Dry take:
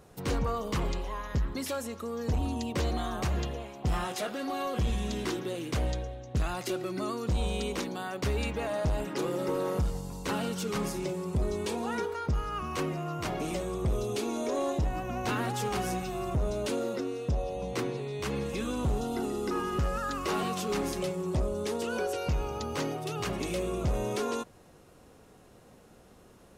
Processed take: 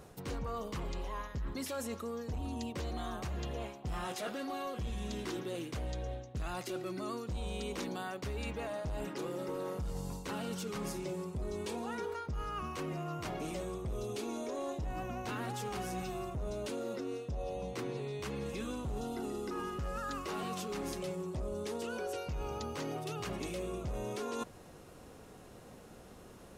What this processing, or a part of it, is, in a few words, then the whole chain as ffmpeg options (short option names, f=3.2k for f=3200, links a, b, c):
compression on the reversed sound: -af "areverse,acompressor=threshold=-38dB:ratio=12,areverse,volume=2.5dB"